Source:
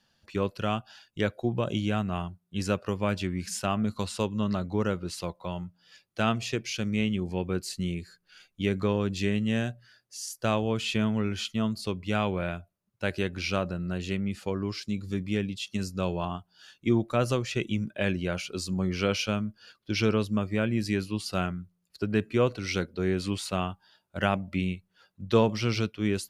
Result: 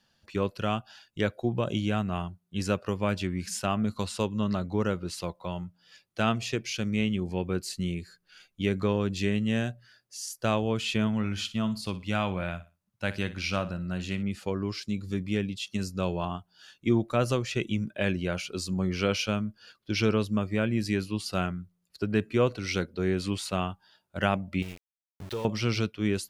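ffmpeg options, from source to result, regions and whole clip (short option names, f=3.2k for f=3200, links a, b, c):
-filter_complex "[0:a]asettb=1/sr,asplit=3[a][b][c];[a]atrim=end=11.074[d];[b]atrim=start=11.07:end=14.23,asetpts=PTS-STARTPTS,afade=t=in:d=0.004:c=qsin,afade=t=out:st=3.156:d=0.004:c=qsin,equalizer=f=410:t=o:w=0.57:g=-7.5,aecho=1:1:60|120|180:0.178|0.0445|0.0111,atrim=end_sample=139356[e];[c]atrim=start=14.226[f];[d][e]acrossfade=d=0.004:c1=hsin:c2=qsin[g];[g][f]acrossfade=d=0.004:c1=qsin:c2=hsin,asettb=1/sr,asplit=3[h][i][j];[h]atrim=end=24.624[k];[i]atrim=start=24.62:end=25.45,asetpts=PTS-STARTPTS,afade=t=in:d=0.004:c=qsin,afade=t=out:st=0.826:d=0.004:c=qsin,acompressor=threshold=-35dB:ratio=3:attack=3.2:release=140:knee=1:detection=peak,aecho=1:1:2.2:0.44,atrim=end_sample=36603,aeval=exprs='val(0)*gte(abs(val(0)),0.00944)':c=same[l];[j]atrim=start=25.446[m];[k][l]acrossfade=d=0.004:c1=hsin:c2=qsin[n];[n][m]acrossfade=d=0.004:c1=qsin:c2=hsin"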